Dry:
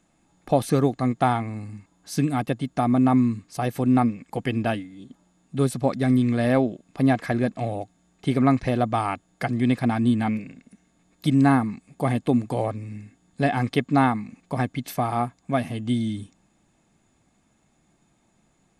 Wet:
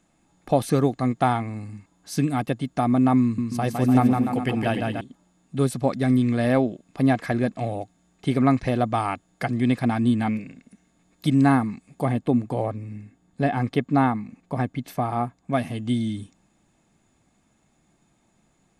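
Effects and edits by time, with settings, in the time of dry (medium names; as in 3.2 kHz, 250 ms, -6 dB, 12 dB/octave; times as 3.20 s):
3.22–5.01 s: bouncing-ball echo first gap 160 ms, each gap 0.85×, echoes 5
12.05–15.53 s: treble shelf 2.1 kHz -7.5 dB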